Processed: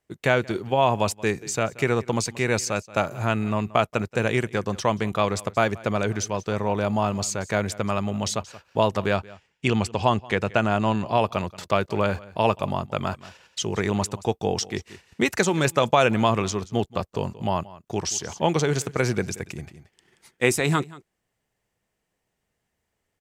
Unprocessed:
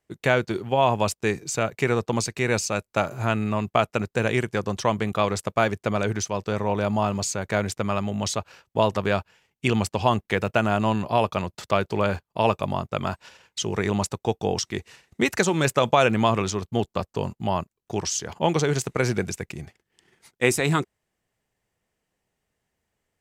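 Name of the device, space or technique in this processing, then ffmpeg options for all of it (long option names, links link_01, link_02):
ducked delay: -filter_complex "[0:a]asettb=1/sr,asplit=3[link_01][link_02][link_03];[link_01]atrim=end=9.164[link_04];[link_02]atrim=start=9.16:end=11.25,asetpts=PTS-STARTPTS,afade=type=in:duration=0.004:curve=qsin,afade=type=out:start_time=2.086:duration=0.004:curve=qsin,lowpass=8500[link_05];[link_03]atrim=start=11.246[link_06];[link_04][link_05]acrossfade=duration=0.004:curve1=hsin:curve2=qsin[link_07];[link_07][link_06]acrossfade=duration=0.004:curve1=qsin:curve2=hsin,asplit=3[link_08][link_09][link_10];[link_09]adelay=179,volume=-9dB[link_11];[link_10]apad=whole_len=1031225[link_12];[link_11][link_12]sidechaincompress=threshold=-30dB:ratio=12:attack=22:release=734[link_13];[link_08][link_13]amix=inputs=2:normalize=0"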